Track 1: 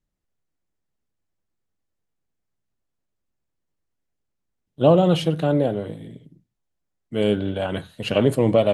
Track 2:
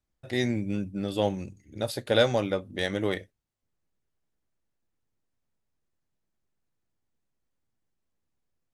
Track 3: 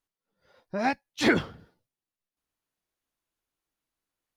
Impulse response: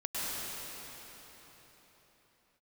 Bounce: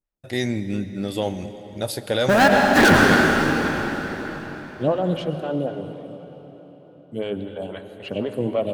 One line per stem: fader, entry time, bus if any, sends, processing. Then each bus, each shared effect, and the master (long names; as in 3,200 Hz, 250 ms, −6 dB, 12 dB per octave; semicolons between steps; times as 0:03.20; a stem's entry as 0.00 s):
−5.0 dB, 0.00 s, no bus, send −14 dB, phaser with staggered stages 3.9 Hz
+2.5 dB, 0.00 s, bus A, send −18 dB, downward expander −46 dBFS
−5.0 dB, 1.55 s, bus A, send −3.5 dB, high shelf with overshoot 2,300 Hz −13 dB, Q 3; leveller curve on the samples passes 5
bus A: 0.0 dB, high-shelf EQ 8,500 Hz +8.5 dB; brickwall limiter −13 dBFS, peak gain reduction 7.5 dB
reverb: on, RT60 4.4 s, pre-delay 96 ms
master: no processing